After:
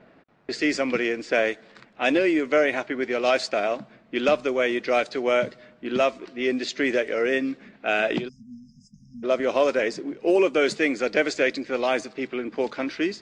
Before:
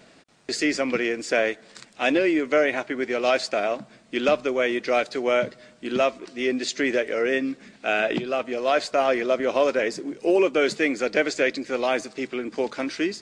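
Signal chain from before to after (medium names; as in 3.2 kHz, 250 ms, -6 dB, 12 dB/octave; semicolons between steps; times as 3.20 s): spectral selection erased 8.28–9.24 s, 240–4900 Hz; level-controlled noise filter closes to 1.7 kHz, open at -17 dBFS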